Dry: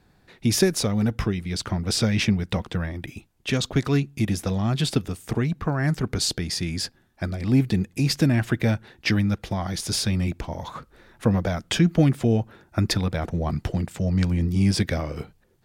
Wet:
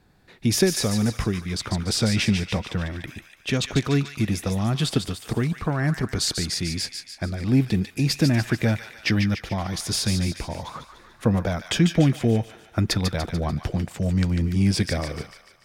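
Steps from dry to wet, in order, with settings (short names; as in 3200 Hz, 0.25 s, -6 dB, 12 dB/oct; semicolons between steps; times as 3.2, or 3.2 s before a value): thin delay 0.146 s, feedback 52%, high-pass 1400 Hz, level -6 dB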